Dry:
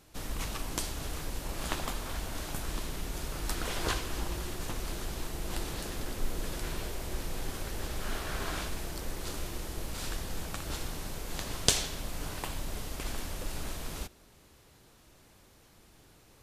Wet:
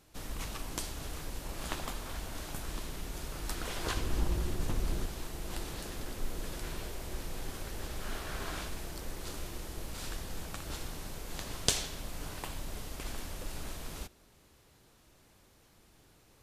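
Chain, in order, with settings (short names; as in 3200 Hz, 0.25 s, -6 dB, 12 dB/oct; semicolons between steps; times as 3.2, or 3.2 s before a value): 3.97–5.06 low shelf 420 Hz +9 dB; gain -3.5 dB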